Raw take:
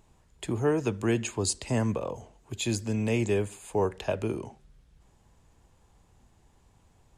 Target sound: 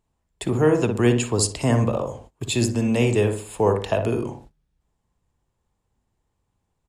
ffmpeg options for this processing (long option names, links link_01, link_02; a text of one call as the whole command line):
ffmpeg -i in.wav -filter_complex "[0:a]asplit=2[link_01][link_02];[link_02]adelay=61,lowpass=frequency=1200:poles=1,volume=-4.5dB,asplit=2[link_03][link_04];[link_04]adelay=61,lowpass=frequency=1200:poles=1,volume=0.41,asplit=2[link_05][link_06];[link_06]adelay=61,lowpass=frequency=1200:poles=1,volume=0.41,asplit=2[link_07][link_08];[link_08]adelay=61,lowpass=frequency=1200:poles=1,volume=0.41,asplit=2[link_09][link_10];[link_10]adelay=61,lowpass=frequency=1200:poles=1,volume=0.41[link_11];[link_01][link_03][link_05][link_07][link_09][link_11]amix=inputs=6:normalize=0,agate=range=-20dB:threshold=-50dB:ratio=16:detection=peak,asetrate=45938,aresample=44100,volume=6.5dB" out.wav